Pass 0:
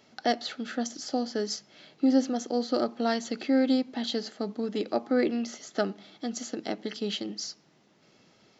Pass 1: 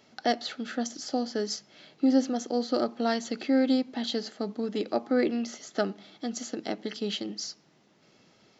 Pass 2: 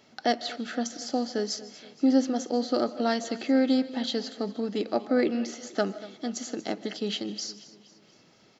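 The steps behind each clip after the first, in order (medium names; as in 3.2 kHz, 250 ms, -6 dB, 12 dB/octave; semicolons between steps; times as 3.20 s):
no audible change
feedback delay 236 ms, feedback 51%, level -18 dB; on a send at -18.5 dB: reverberation RT60 0.30 s, pre-delay 110 ms; on the sum: trim +1 dB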